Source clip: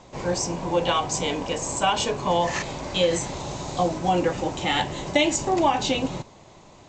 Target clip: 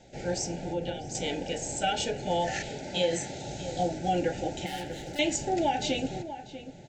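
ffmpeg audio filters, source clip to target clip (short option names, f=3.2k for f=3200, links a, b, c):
-filter_complex "[0:a]asettb=1/sr,asplit=3[a][b][c];[a]atrim=end=0.694[d];[b]atrim=start=0.69:end=1.15,asetpts=PTS-STARTPTS,afade=t=in:d=0.004:c=qsin,afade=t=out:st=0.456:d=0.004:c=qsin,acrossover=split=440[e][f];[f]acompressor=threshold=-32dB:ratio=6[g];[e][g]amix=inputs=2:normalize=0[h];[c]atrim=start=1.146[i];[d][h]acrossfade=d=0.004:c1=hsin:c2=qsin[j];[j][i]acrossfade=d=0.004:c1=qsin:c2=hsin,asettb=1/sr,asplit=3[k][l][m];[k]atrim=end=2.704[n];[l]atrim=start=2.7:end=3.46,asetpts=PTS-STARTPTS,afade=t=in:d=0.004:c=qsin,afade=t=out:st=0.756:d=0.004:c=qsin,highpass=100[o];[m]atrim=start=3.456[p];[n][o]acrossfade=d=0.004:c1=hsin:c2=qsin[q];[q][p]acrossfade=d=0.004:c1=qsin:c2=hsin,asettb=1/sr,asplit=3[r][s][t];[r]atrim=end=4.664[u];[s]atrim=start=4.66:end=5.19,asetpts=PTS-STARTPTS,afade=t=in:d=0.004:c=qsin,afade=t=out:st=0.526:d=0.004:c=qsin,asoftclip=type=hard:threshold=-31.5dB[v];[t]atrim=start=5.186[w];[u][v]acrossfade=d=0.004:c1=hsin:c2=qsin[x];[x][w]acrossfade=d=0.004:c1=qsin:c2=hsin,asuperstop=centerf=1100:order=20:qfactor=2.3,asplit=2[y][z];[z]adelay=641.4,volume=-12dB,highshelf=f=4k:g=-14.4[aa];[y][aa]amix=inputs=2:normalize=0,volume=-5.5dB"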